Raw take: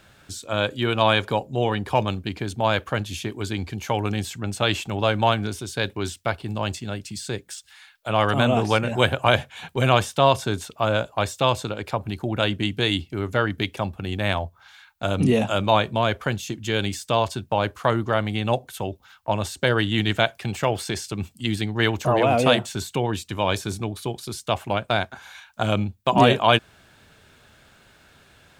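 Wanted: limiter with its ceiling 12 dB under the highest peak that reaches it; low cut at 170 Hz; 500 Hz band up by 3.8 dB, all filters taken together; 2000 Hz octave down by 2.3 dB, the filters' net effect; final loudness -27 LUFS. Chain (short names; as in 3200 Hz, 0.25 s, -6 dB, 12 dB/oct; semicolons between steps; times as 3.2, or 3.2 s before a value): HPF 170 Hz; bell 500 Hz +5 dB; bell 2000 Hz -3.5 dB; gain -0.5 dB; limiter -13.5 dBFS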